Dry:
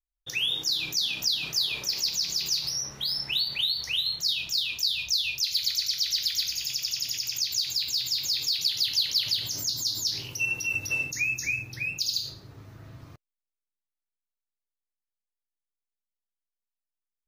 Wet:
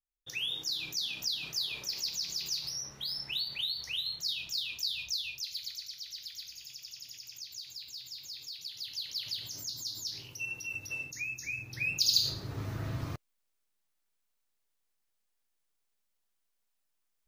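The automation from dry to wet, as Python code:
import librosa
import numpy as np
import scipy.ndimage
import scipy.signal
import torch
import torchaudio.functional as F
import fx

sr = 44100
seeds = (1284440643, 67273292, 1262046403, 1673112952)

y = fx.gain(x, sr, db=fx.line((5.03, -7.5), (5.99, -16.5), (8.66, -16.5), (9.36, -10.0), (11.46, -10.0), (11.79, -2.5), (12.64, 10.0)))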